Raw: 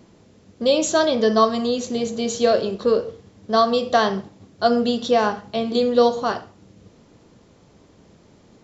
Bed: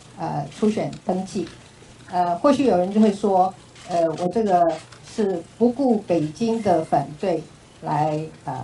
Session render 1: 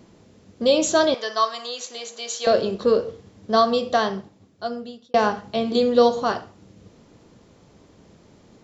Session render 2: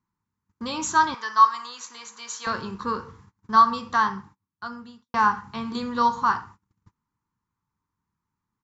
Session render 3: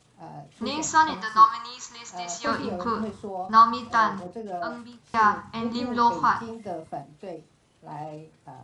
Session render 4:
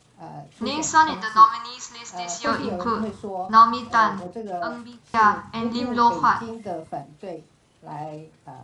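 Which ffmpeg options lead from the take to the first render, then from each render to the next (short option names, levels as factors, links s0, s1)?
-filter_complex "[0:a]asettb=1/sr,asplit=3[s0][s1][s2];[s0]atrim=end=1.144[s3];[s1]atrim=start=1.14:end=2.47,asetpts=PTS-STARTPTS,afade=t=in:d=0.004:c=qsin,afade=t=out:st=1.326:d=0.004:c=qsin,highpass=980[s4];[s2]atrim=start=2.466[s5];[s3][s4]acrossfade=d=0.004:c1=hsin:c2=qsin[s6];[s6][s5]acrossfade=d=0.004:c1=qsin:c2=hsin,asplit=2[s7][s8];[s7]atrim=end=5.14,asetpts=PTS-STARTPTS,afade=t=out:st=3.52:d=1.62[s9];[s8]atrim=start=5.14,asetpts=PTS-STARTPTS,afade=t=in:d=0.004:c=hsin[s10];[s9][s10]concat=n=2:v=0:a=1"
-af "agate=range=0.0398:threshold=0.00631:ratio=16:detection=peak,firequalizer=gain_entry='entry(110,0);entry(630,-25);entry(920,8);entry(3100,-10);entry(6000,-4)':delay=0.05:min_phase=1"
-filter_complex "[1:a]volume=0.168[s0];[0:a][s0]amix=inputs=2:normalize=0"
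-af "volume=1.41,alimiter=limit=0.708:level=0:latency=1"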